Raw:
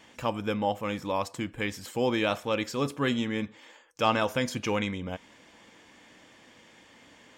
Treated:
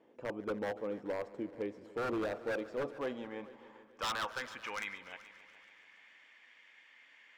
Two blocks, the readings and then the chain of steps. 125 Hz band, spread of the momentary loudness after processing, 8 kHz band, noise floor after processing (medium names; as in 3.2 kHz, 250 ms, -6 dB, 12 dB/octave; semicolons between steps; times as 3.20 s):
-17.0 dB, 22 LU, -10.5 dB, -62 dBFS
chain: band-pass sweep 420 Hz -> 2.1 kHz, 2.27–5.16 s; wavefolder -29.5 dBFS; multi-head delay 143 ms, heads all three, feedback 47%, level -21 dB